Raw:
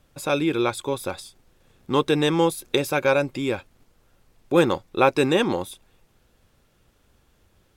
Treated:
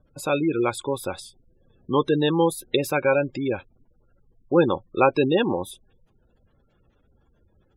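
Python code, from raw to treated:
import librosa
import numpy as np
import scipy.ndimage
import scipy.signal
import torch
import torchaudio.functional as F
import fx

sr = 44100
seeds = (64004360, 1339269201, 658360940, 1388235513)

y = fx.spec_gate(x, sr, threshold_db=-20, keep='strong')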